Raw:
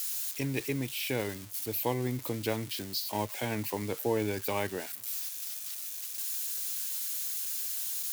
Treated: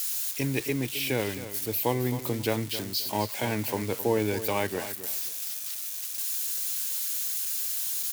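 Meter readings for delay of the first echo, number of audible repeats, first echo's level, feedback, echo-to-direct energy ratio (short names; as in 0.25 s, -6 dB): 0.265 s, 2, -12.5 dB, 21%, -12.5 dB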